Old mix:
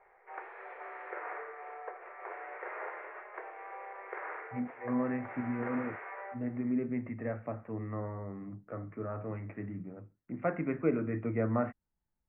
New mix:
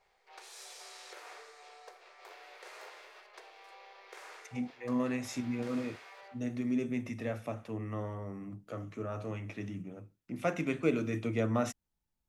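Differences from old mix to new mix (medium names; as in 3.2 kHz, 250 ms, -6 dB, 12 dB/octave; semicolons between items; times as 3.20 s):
background -10.0 dB; master: remove steep low-pass 2.1 kHz 48 dB/octave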